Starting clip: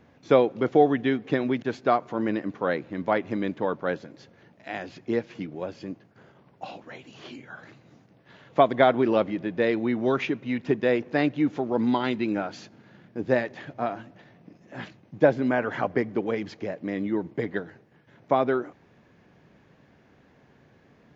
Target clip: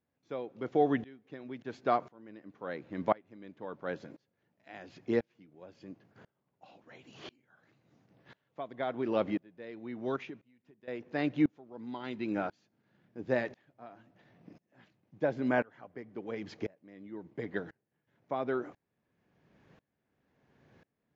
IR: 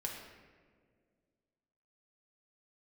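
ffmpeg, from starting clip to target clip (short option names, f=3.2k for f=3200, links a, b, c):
-filter_complex "[0:a]asettb=1/sr,asplit=3[a][b][c];[a]atrim=end=10.164[d];[b]atrim=start=10.16:end=10.88,asetpts=PTS-STARTPTS,afade=t=in:d=0.004:c=qsin,afade=t=out:st=0.716:d=0.004:c=qsin,acompressor=threshold=-38dB:ratio=5[e];[c]atrim=start=10.876[f];[d][e]acrossfade=d=0.004:c1=hsin:c2=qsin[g];[g][f]acrossfade=d=0.004:c1=qsin:c2=hsin,aeval=exprs='val(0)*pow(10,-28*if(lt(mod(-0.96*n/s,1),2*abs(-0.96)/1000),1-mod(-0.96*n/s,1)/(2*abs(-0.96)/1000),(mod(-0.96*n/s,1)-2*abs(-0.96)/1000)/(1-2*abs(-0.96)/1000))/20)':c=same,volume=-2dB"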